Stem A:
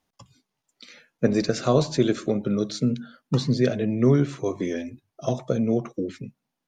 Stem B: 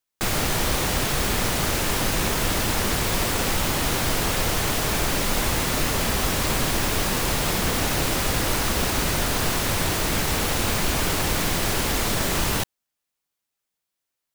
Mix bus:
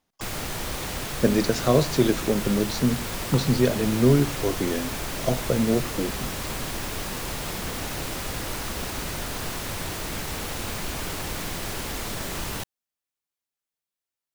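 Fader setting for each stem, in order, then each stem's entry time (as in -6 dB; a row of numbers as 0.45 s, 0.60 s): +0.5 dB, -8.0 dB; 0.00 s, 0.00 s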